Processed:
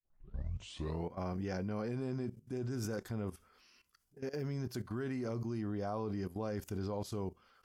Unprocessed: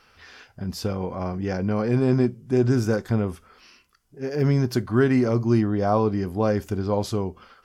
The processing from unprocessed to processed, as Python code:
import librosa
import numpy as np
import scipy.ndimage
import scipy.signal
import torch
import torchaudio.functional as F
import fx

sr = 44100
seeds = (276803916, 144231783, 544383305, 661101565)

y = fx.tape_start_head(x, sr, length_s=1.12)
y = fx.level_steps(y, sr, step_db=15)
y = fx.high_shelf(y, sr, hz=6100.0, db=8.0)
y = F.gain(torch.from_numpy(y), -7.5).numpy()